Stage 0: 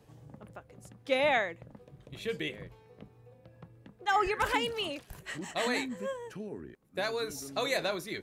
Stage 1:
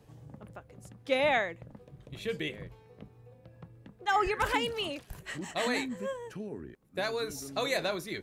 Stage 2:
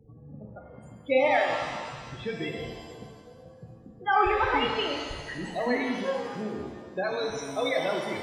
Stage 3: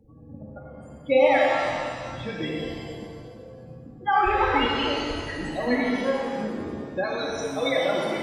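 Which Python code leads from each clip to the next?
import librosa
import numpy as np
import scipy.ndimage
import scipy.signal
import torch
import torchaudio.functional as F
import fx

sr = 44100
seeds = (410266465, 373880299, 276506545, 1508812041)

y1 = fx.low_shelf(x, sr, hz=160.0, db=4.0)
y2 = fx.spec_topn(y1, sr, count=16)
y2 = fx.rev_shimmer(y2, sr, seeds[0], rt60_s=1.6, semitones=7, shimmer_db=-8, drr_db=1.5)
y2 = y2 * librosa.db_to_amplitude(3.0)
y3 = fx.room_shoebox(y2, sr, seeds[1], volume_m3=3600.0, walls='mixed', distance_m=2.3)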